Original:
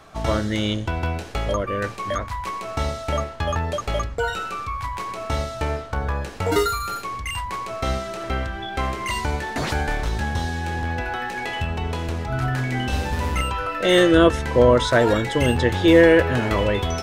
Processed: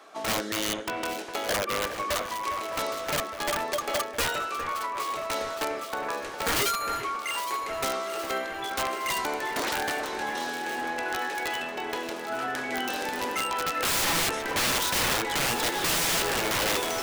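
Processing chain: HPF 290 Hz 24 dB/oct; wrapped overs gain 18.5 dB; on a send: echo with dull and thin repeats by turns 0.407 s, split 2500 Hz, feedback 80%, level -9 dB; on the sum: gain -2.5 dB

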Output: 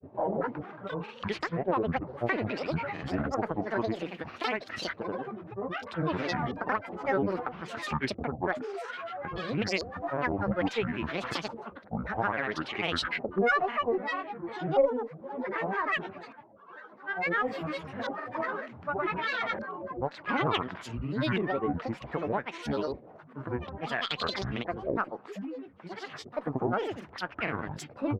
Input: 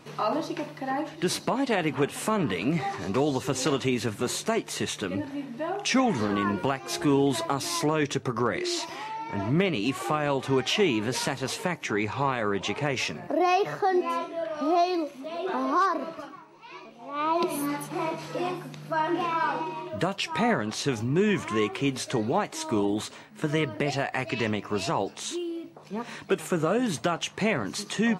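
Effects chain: LFO low-pass saw up 0.61 Hz 730–3100 Hz; grains 0.1 s, grains 20/s, pitch spread up and down by 12 st; added harmonics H 4 -29 dB, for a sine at -8.5 dBFS; gain -5 dB

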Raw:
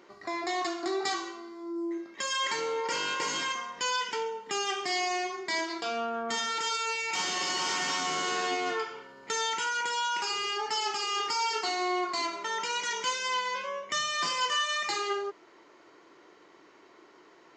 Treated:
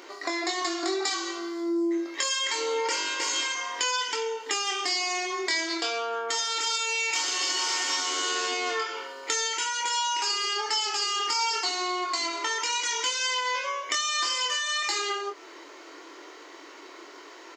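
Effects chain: high shelf 2700 Hz +9 dB; compressor 4:1, threshold -36 dBFS, peak gain reduction 12.5 dB; brick-wall FIR high-pass 250 Hz; doubler 24 ms -5.5 dB; gain +8 dB

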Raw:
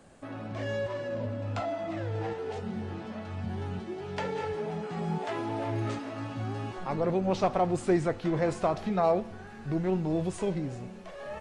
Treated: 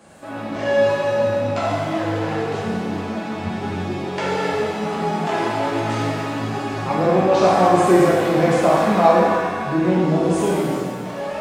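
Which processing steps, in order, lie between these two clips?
HPF 170 Hz 6 dB/oct; shimmer reverb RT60 1.5 s, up +7 st, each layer -8 dB, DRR -6 dB; gain +6 dB

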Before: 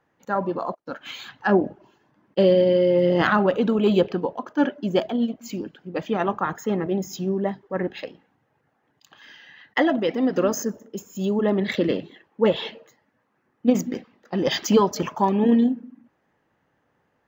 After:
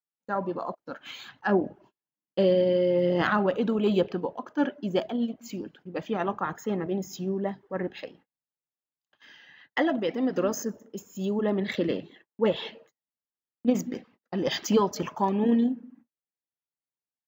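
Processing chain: gate -49 dBFS, range -34 dB; gain -5 dB

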